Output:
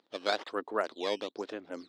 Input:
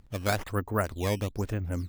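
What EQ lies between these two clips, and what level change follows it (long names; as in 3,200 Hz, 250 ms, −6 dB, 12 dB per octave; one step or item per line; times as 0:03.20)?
high-pass filter 320 Hz 24 dB per octave
high-frequency loss of the air 370 metres
flat-topped bell 5,500 Hz +15.5 dB
0.0 dB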